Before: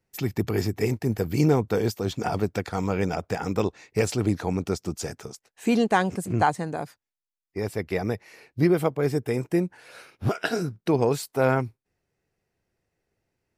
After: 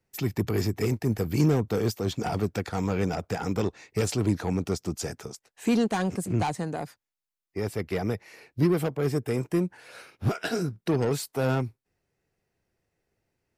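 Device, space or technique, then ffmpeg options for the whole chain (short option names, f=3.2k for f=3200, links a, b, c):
one-band saturation: -filter_complex "[0:a]acrossover=split=280|4300[a][b][c];[b]asoftclip=type=tanh:threshold=-25dB[d];[a][d][c]amix=inputs=3:normalize=0"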